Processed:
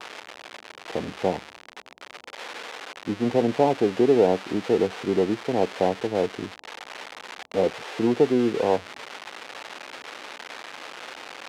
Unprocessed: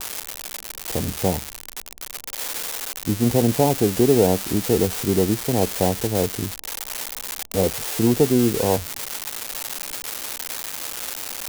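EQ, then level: band-pass 140–5300 Hz; tone controls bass -8 dB, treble -13 dB; 0.0 dB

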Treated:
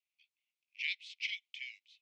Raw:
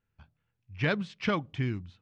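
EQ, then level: steep high-pass 2.1 kHz 96 dB/octave; distance through air 52 m; +1.5 dB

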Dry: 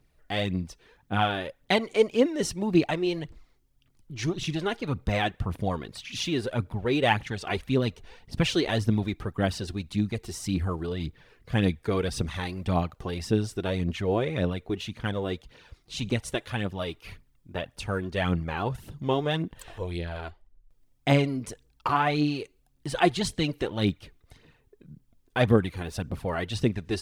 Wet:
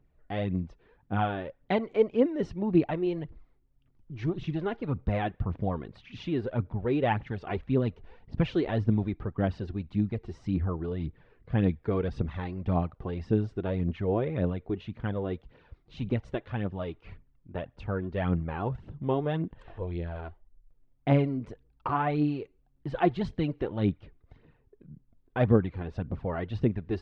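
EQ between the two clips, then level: tape spacing loss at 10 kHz 43 dB; 0.0 dB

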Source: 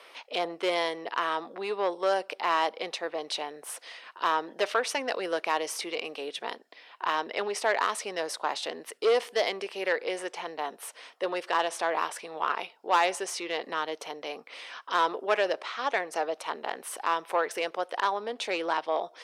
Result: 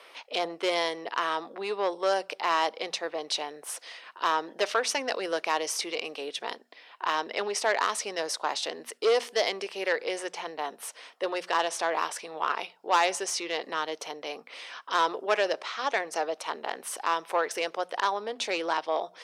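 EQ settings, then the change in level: hum notches 60/120/180/240 Hz; dynamic bell 5.9 kHz, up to +6 dB, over -50 dBFS, Q 1.2; 0.0 dB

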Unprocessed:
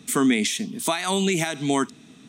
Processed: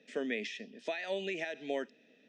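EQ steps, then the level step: vowel filter e; cabinet simulation 150–6700 Hz, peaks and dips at 220 Hz +4 dB, 610 Hz +3 dB, 960 Hz +6 dB, 5.2 kHz +7 dB; 0.0 dB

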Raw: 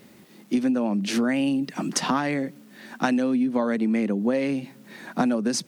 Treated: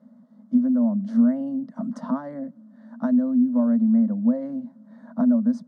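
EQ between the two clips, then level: two resonant band-passes 400 Hz, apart 1.5 oct; static phaser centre 500 Hz, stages 8; +8.0 dB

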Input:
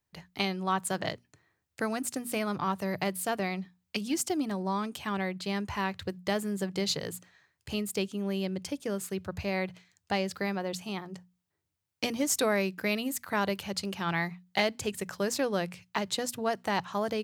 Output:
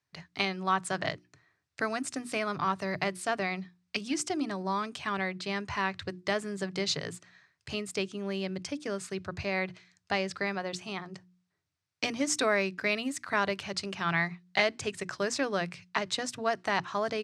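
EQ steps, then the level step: dynamic bell 4.4 kHz, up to -4 dB, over -49 dBFS, Q 3.5; cabinet simulation 110–7600 Hz, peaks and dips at 210 Hz -9 dB, 340 Hz -5 dB, 500 Hz -8 dB, 850 Hz -6 dB, 3.1 kHz -4 dB, 7 kHz -5 dB; hum notches 60/120/180/240/300/360 Hz; +4.0 dB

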